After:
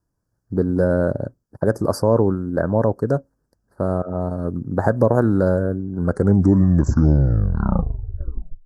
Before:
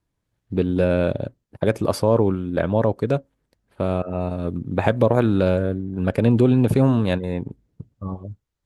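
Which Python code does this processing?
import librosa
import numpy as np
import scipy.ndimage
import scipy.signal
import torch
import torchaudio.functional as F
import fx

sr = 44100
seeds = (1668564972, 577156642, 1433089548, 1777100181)

y = fx.tape_stop_end(x, sr, length_s=2.76)
y = scipy.signal.sosfilt(scipy.signal.cheby1(3, 1.0, [1600.0, 4900.0], 'bandstop', fs=sr, output='sos'), y)
y = y * 10.0 ** (1.5 / 20.0)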